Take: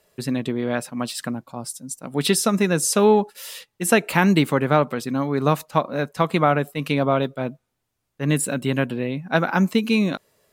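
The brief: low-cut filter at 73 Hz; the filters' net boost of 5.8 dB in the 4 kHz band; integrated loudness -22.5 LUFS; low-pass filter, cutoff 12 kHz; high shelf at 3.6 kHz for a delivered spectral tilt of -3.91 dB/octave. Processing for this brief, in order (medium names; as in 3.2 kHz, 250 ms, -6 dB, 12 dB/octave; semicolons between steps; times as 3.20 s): high-pass 73 Hz; low-pass 12 kHz; treble shelf 3.6 kHz +5.5 dB; peaking EQ 4 kHz +3.5 dB; trim -2 dB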